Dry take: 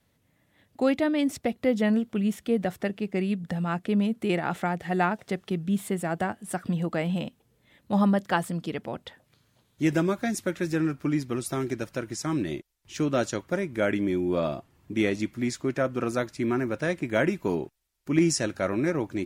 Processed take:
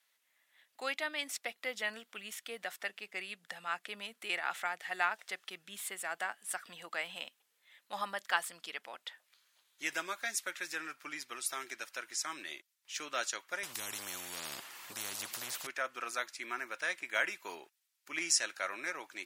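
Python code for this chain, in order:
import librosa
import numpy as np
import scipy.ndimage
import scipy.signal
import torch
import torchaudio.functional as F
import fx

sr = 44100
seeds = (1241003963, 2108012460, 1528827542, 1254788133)

y = scipy.signal.sosfilt(scipy.signal.butter(2, 1400.0, 'highpass', fs=sr, output='sos'), x)
y = fx.spectral_comp(y, sr, ratio=10.0, at=(13.63, 15.67))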